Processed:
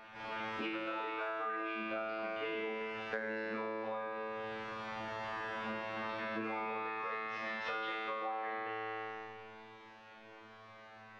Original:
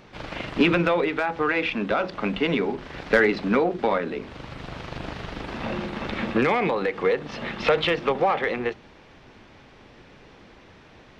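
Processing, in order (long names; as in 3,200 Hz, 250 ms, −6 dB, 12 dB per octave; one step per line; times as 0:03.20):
parametric band 1,200 Hz +12 dB 2.8 octaves
tuned comb filter 110 Hz, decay 1.9 s, mix 100%
downward compressor 10 to 1, threshold −41 dBFS, peak gain reduction 17.5 dB
on a send: backwards echo 323 ms −14.5 dB
on the sum: level +5 dB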